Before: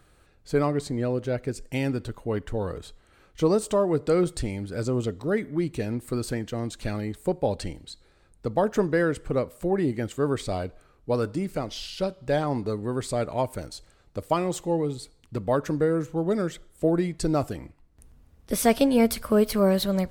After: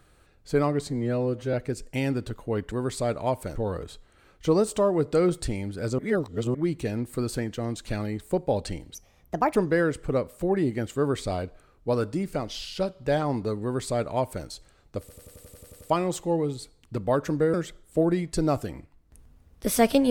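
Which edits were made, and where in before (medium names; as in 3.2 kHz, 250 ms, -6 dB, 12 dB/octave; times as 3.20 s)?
0.89–1.32 s: stretch 1.5×
4.93–5.49 s: reverse
7.89–8.77 s: speed 144%
12.83–13.67 s: copy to 2.50 s
14.21 s: stutter 0.09 s, 10 plays
15.94–16.40 s: delete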